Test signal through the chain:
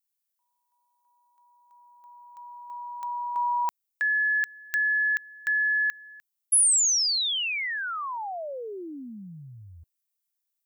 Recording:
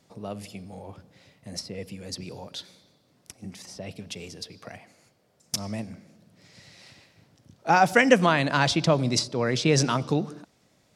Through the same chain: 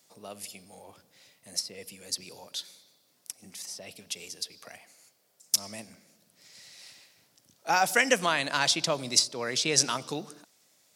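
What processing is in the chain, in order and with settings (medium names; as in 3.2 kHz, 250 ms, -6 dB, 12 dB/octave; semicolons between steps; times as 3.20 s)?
RIAA curve recording; trim -5 dB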